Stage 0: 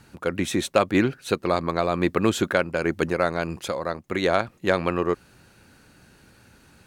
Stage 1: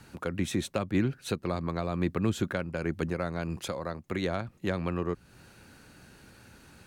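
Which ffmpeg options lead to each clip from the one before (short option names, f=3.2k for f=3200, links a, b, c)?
-filter_complex "[0:a]acrossover=split=210[a][b];[b]acompressor=threshold=-36dB:ratio=2.5[c];[a][c]amix=inputs=2:normalize=0"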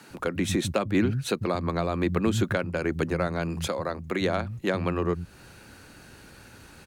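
-filter_complex "[0:a]acrossover=split=170[a][b];[a]adelay=100[c];[c][b]amix=inputs=2:normalize=0,volume=5.5dB"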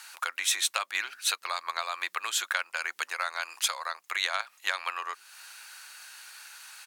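-af "highpass=f=930:w=0.5412,highpass=f=930:w=1.3066,highshelf=f=2.3k:g=9"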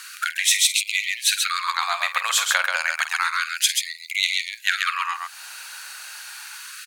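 -filter_complex "[0:a]asplit=2[a][b];[b]aecho=0:1:49.56|134.1:0.282|0.631[c];[a][c]amix=inputs=2:normalize=0,afftfilt=real='re*gte(b*sr/1024,430*pow(2000/430,0.5+0.5*sin(2*PI*0.3*pts/sr)))':imag='im*gte(b*sr/1024,430*pow(2000/430,0.5+0.5*sin(2*PI*0.3*pts/sr)))':win_size=1024:overlap=0.75,volume=8dB"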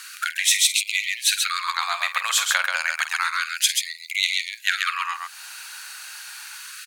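-af "lowshelf=f=450:g=-11.5"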